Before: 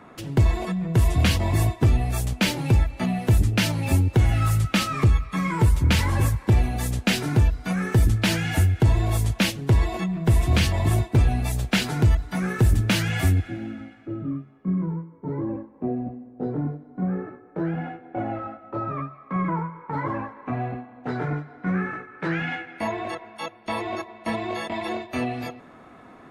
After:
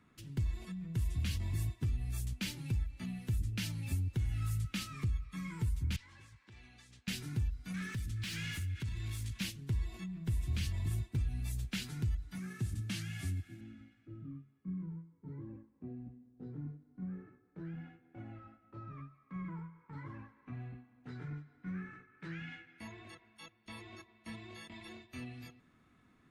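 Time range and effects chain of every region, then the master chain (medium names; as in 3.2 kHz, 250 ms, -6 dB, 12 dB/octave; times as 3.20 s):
5.96–7.08 s: high-pass 1.2 kHz 6 dB/octave + compression 12:1, threshold -33 dBFS + distance through air 120 m
7.74–9.41 s: amplifier tone stack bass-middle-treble 6-0-2 + compression 12:1, threshold -37 dBFS + overdrive pedal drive 41 dB, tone 2 kHz, clips at -12 dBFS
12.38–13.61 s: CVSD coder 64 kbps + high-pass 100 Hz + comb of notches 490 Hz
whole clip: amplifier tone stack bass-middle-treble 6-0-2; compression, threshold -31 dBFS; trim +1 dB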